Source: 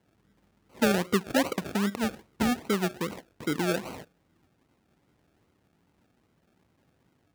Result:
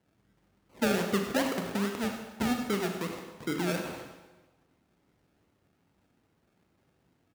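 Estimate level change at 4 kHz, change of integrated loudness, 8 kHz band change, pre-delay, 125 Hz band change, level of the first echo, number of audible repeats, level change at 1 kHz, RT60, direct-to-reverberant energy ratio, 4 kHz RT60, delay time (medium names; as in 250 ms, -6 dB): -2.0 dB, -2.5 dB, -2.5 dB, 22 ms, -2.5 dB, -11.5 dB, 1, -2.5 dB, 1.2 s, 3.0 dB, 1.1 s, 97 ms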